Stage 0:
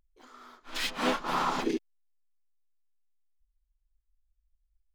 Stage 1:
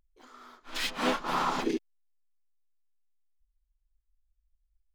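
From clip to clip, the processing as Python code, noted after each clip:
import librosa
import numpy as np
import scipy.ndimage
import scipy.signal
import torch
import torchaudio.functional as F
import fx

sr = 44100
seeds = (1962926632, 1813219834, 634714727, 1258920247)

y = x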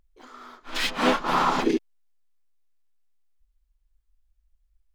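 y = fx.high_shelf(x, sr, hz=5000.0, db=-5.0)
y = F.gain(torch.from_numpy(y), 7.0).numpy()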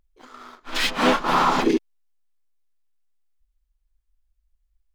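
y = fx.leveller(x, sr, passes=1)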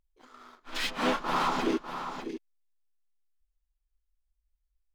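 y = x + 10.0 ** (-9.0 / 20.0) * np.pad(x, (int(598 * sr / 1000.0), 0))[:len(x)]
y = F.gain(torch.from_numpy(y), -9.0).numpy()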